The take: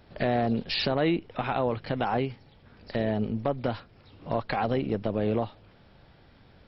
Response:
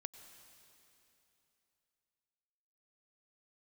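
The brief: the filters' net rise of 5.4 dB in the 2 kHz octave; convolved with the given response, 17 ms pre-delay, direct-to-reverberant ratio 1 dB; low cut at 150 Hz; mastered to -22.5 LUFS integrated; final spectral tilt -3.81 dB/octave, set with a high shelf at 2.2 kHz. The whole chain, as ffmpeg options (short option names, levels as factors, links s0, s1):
-filter_complex "[0:a]highpass=150,equalizer=f=2000:t=o:g=8.5,highshelf=f=2200:g=-3,asplit=2[s0][s1];[1:a]atrim=start_sample=2205,adelay=17[s2];[s1][s2]afir=irnorm=-1:irlink=0,volume=1.41[s3];[s0][s3]amix=inputs=2:normalize=0,volume=1.5"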